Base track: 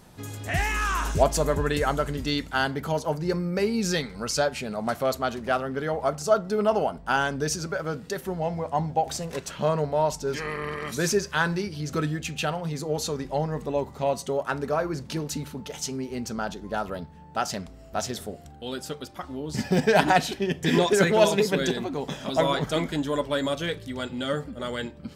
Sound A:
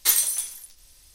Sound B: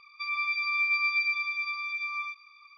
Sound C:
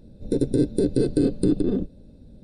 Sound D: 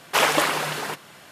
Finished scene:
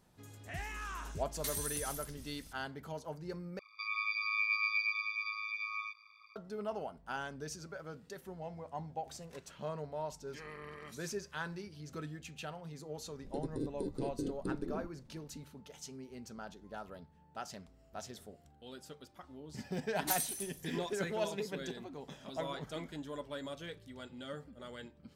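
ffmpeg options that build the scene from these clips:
ffmpeg -i bed.wav -i cue0.wav -i cue1.wav -i cue2.wav -filter_complex "[1:a]asplit=2[link_01][link_02];[0:a]volume=-16.5dB[link_03];[link_01]acompressor=threshold=-33dB:ratio=6:attack=3.2:release=140:knee=1:detection=peak[link_04];[2:a]aeval=exprs='val(0)*sin(2*PI*53*n/s)':channel_layout=same[link_05];[link_03]asplit=2[link_06][link_07];[link_06]atrim=end=3.594[link_08];[link_05]atrim=end=2.77,asetpts=PTS-STARTPTS,volume=-3.5dB[link_09];[link_07]atrim=start=6.356[link_10];[link_04]atrim=end=1.14,asetpts=PTS-STARTPTS,volume=-3.5dB,afade=type=in:duration=0.004:curve=hsin,afade=type=out:start_time=1.136:duration=0.004:curve=hsin,adelay=1390[link_11];[3:a]atrim=end=2.43,asetpts=PTS-STARTPTS,volume=-18dB,afade=type=in:duration=0.004:curve=hsin,afade=type=out:start_time=2.426:duration=0.004:curve=hsin,adelay=13020[link_12];[link_02]atrim=end=1.14,asetpts=PTS-STARTPTS,volume=-15.5dB,afade=type=in:duration=0.004:curve=hsin,afade=type=out:start_time=1.136:duration=0.004:curve=hsin,adelay=20020[link_13];[link_08][link_09]acrossfade=duration=0.004:curve1=hsin:curve2=hsin[link_14];[link_14][link_10]acrossfade=duration=0.004:curve1=hsin:curve2=hsin[link_15];[link_15][link_11][link_12][link_13]amix=inputs=4:normalize=0" out.wav

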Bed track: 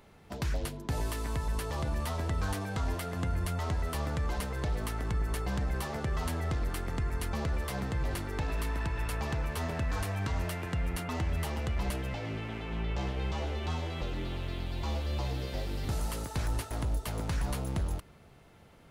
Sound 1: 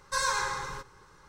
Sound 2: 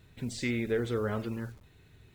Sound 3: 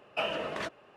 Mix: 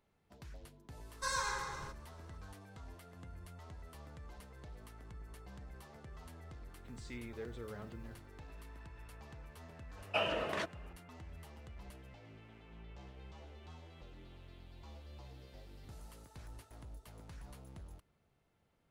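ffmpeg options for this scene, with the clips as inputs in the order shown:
ffmpeg -i bed.wav -i cue0.wav -i cue1.wav -i cue2.wav -filter_complex "[0:a]volume=-19.5dB[link_01];[1:a]atrim=end=1.28,asetpts=PTS-STARTPTS,volume=-8dB,afade=type=in:duration=0.004:curve=hsin,afade=type=out:start_time=1.276:duration=0.004:curve=hsin,adelay=1100[link_02];[2:a]atrim=end=2.14,asetpts=PTS-STARTPTS,volume=-16dB,afade=type=in:duration=0.004:curve=hsin,afade=type=out:start_time=2.136:duration=0.004:curve=hsin,adelay=6670[link_03];[3:a]atrim=end=0.96,asetpts=PTS-STARTPTS,volume=-2dB,afade=type=in:duration=0.004:curve=hsin,afade=type=out:start_time=0.956:duration=0.004:curve=hsin,adelay=9970[link_04];[link_01][link_02][link_03][link_04]amix=inputs=4:normalize=0" out.wav

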